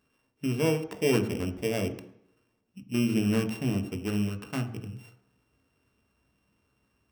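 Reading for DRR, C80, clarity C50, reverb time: 6.0 dB, 14.0 dB, 11.5 dB, 0.70 s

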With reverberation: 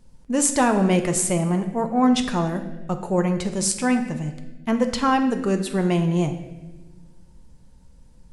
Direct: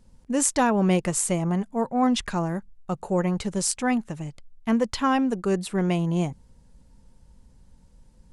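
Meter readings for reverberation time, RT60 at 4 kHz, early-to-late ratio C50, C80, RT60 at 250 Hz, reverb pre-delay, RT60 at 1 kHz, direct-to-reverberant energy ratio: 1.2 s, 1.0 s, 9.5 dB, 11.0 dB, 1.8 s, 6 ms, 1.0 s, 6.0 dB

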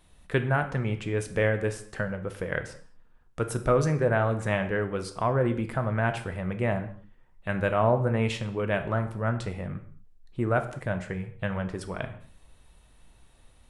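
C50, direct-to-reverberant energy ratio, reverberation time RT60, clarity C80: 12.0 dB, 7.5 dB, non-exponential decay, 15.0 dB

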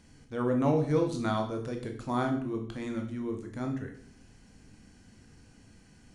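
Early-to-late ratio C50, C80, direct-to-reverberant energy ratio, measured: 8.5 dB, 12.0 dB, 3.0 dB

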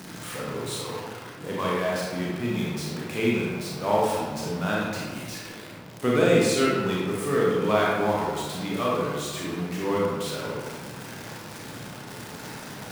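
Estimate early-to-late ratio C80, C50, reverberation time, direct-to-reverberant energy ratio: 1.0 dB, −2.0 dB, 1.5 s, −5.0 dB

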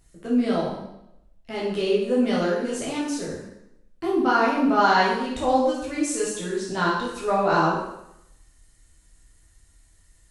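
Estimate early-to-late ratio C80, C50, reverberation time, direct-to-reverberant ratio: 4.5 dB, 2.0 dB, 0.80 s, −7.0 dB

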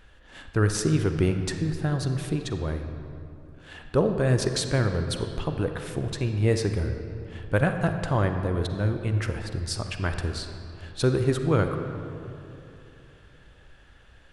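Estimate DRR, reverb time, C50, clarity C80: 6.0 dB, 2.9 s, 6.5 dB, 7.5 dB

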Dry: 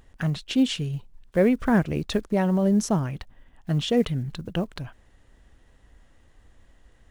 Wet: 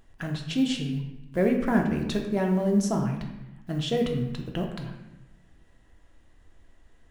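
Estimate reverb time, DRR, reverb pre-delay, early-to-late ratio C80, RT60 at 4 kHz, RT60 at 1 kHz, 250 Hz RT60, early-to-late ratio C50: 0.95 s, 1.5 dB, 3 ms, 8.0 dB, 0.70 s, 0.95 s, 1.3 s, 6.0 dB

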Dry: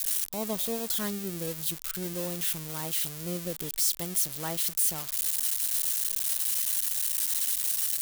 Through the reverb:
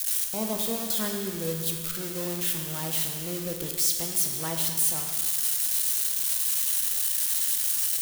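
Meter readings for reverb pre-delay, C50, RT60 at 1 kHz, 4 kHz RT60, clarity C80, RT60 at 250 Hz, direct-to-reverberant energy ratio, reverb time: 8 ms, 4.5 dB, 1.9 s, 1.8 s, 5.5 dB, 1.9 s, 2.5 dB, 1.9 s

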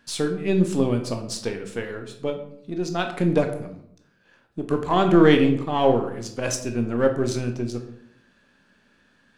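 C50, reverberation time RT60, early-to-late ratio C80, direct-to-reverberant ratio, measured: 9.0 dB, 0.70 s, 12.0 dB, 4.5 dB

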